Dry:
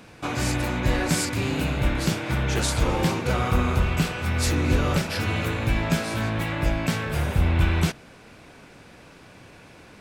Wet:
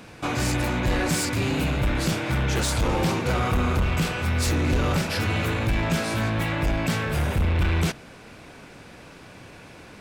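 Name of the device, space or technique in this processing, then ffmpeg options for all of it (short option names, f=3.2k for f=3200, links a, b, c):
saturation between pre-emphasis and de-emphasis: -af "highshelf=f=4.7k:g=7,asoftclip=type=tanh:threshold=-20dB,highshelf=f=4.7k:g=-7,volume=3dB"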